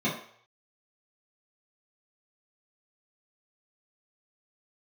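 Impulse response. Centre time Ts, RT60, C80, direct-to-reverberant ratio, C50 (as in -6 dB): 33 ms, 0.60 s, 10.0 dB, -9.5 dB, 6.0 dB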